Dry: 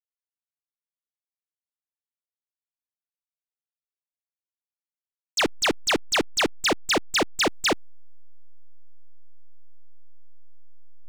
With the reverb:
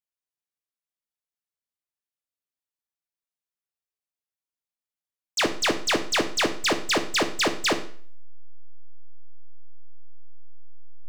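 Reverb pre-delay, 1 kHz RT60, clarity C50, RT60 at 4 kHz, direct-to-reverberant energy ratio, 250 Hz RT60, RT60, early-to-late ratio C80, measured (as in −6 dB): 12 ms, 0.50 s, 12.5 dB, 0.45 s, 6.0 dB, 0.50 s, 0.50 s, 16.0 dB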